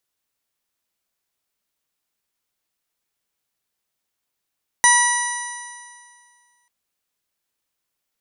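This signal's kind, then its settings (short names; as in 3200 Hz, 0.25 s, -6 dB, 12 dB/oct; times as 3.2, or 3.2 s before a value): stretched partials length 1.84 s, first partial 964 Hz, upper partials 1.5/-16/-11/-19/-1/-11.5/-19.5/-1 dB, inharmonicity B 0.0018, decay 2.00 s, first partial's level -15 dB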